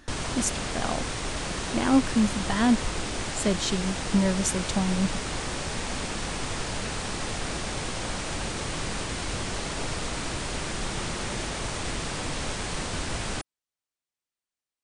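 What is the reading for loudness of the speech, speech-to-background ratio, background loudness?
-27.0 LUFS, 4.5 dB, -31.5 LUFS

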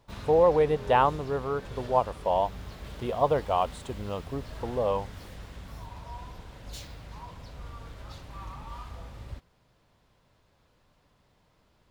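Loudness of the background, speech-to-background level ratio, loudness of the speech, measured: -43.0 LUFS, 16.0 dB, -27.0 LUFS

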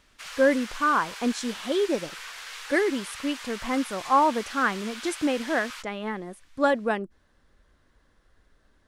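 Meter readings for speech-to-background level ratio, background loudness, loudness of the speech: 12.0 dB, -38.5 LUFS, -26.5 LUFS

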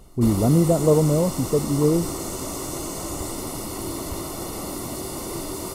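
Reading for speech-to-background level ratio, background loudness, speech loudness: 9.5 dB, -30.0 LUFS, -20.5 LUFS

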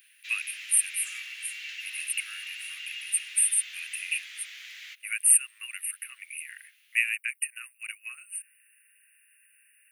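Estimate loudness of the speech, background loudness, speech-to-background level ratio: -27.5 LUFS, -38.5 LUFS, 11.0 dB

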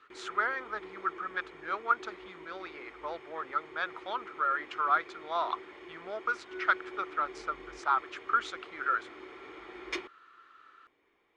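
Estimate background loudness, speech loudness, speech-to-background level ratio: -47.0 LUFS, -33.5 LUFS, 13.5 dB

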